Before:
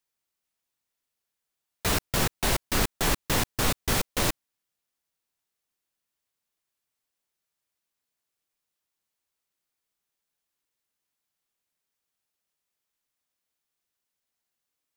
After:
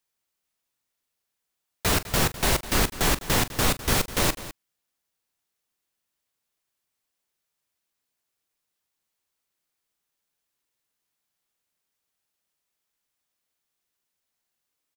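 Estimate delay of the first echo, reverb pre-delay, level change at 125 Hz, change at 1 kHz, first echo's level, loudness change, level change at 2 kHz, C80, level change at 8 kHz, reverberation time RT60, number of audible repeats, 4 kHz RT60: 42 ms, none, +2.5 dB, +2.5 dB, -15.0 dB, +2.5 dB, +3.0 dB, none, +3.0 dB, none, 2, none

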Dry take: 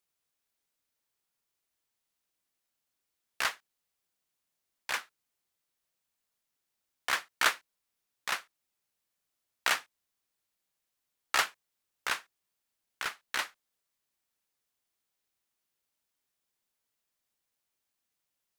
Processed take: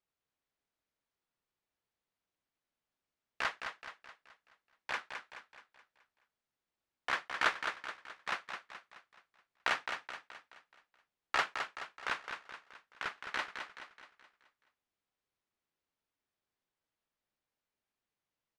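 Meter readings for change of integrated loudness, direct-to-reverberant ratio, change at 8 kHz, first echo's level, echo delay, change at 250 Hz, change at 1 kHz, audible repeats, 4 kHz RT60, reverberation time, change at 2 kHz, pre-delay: -5.0 dB, none, -13.5 dB, -7.0 dB, 0.213 s, +0.5 dB, -1.5 dB, 5, none, none, -3.0 dB, none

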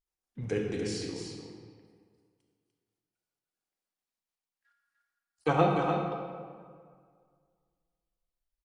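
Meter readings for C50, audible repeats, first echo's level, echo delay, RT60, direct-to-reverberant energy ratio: 0.5 dB, 1, -6.0 dB, 0.297 s, 2.0 s, -0.5 dB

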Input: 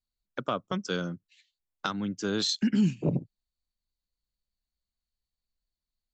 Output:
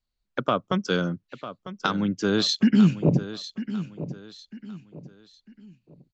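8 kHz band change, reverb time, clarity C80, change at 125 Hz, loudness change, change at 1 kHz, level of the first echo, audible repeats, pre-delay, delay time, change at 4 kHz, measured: +1.0 dB, none, none, +7.0 dB, +5.5 dB, +6.5 dB, -13.0 dB, 3, none, 0.949 s, +5.0 dB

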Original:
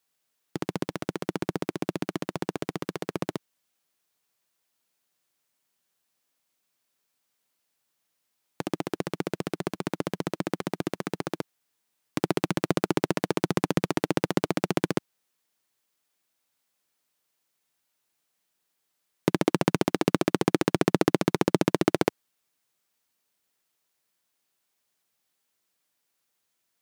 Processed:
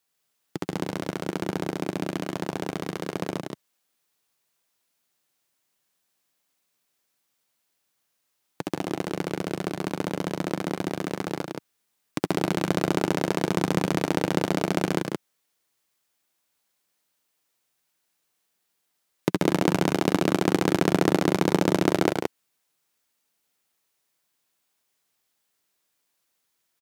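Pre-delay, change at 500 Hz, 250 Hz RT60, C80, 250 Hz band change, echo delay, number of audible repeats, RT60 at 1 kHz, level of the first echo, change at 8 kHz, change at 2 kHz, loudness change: none, +2.0 dB, none, none, +2.0 dB, 77 ms, 2, none, -9.5 dB, +2.5 dB, +2.5 dB, +2.0 dB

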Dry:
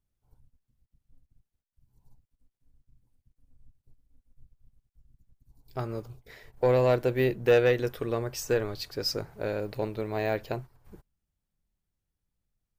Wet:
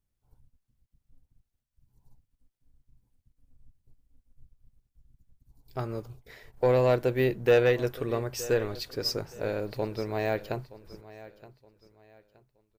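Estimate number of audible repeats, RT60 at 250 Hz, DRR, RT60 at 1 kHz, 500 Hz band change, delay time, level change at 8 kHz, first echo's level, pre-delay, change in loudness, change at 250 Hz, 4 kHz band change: 2, none, none, none, 0.0 dB, 0.921 s, 0.0 dB, -18.0 dB, none, 0.0 dB, 0.0 dB, 0.0 dB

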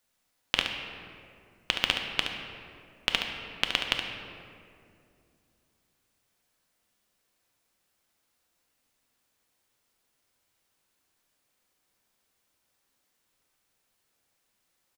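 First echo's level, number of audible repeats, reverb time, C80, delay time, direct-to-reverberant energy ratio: -8.0 dB, 1, 2.4 s, 5.5 dB, 71 ms, 1.5 dB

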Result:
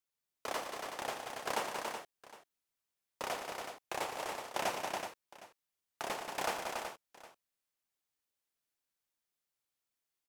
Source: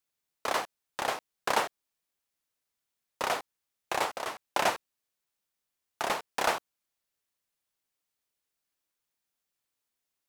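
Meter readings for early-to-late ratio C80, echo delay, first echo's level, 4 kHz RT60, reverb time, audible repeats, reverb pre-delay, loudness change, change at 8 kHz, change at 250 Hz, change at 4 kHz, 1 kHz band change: none, 0.111 s, -10.0 dB, none, none, 5, none, -7.5 dB, -4.5 dB, -4.5 dB, -6.0 dB, -7.0 dB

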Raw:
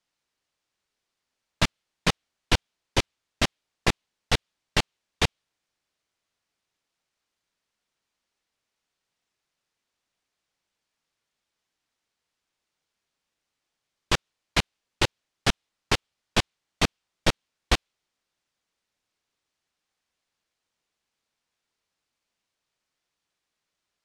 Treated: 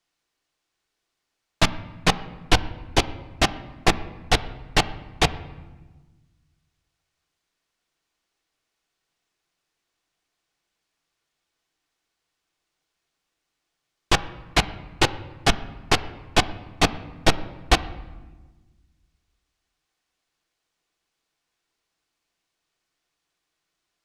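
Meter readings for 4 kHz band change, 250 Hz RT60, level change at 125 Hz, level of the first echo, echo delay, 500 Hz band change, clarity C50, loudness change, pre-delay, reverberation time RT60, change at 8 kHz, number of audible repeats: +3.0 dB, 1.9 s, +3.0 dB, none, none, +5.0 dB, 15.5 dB, +4.0 dB, 3 ms, 1.3 s, +3.0 dB, none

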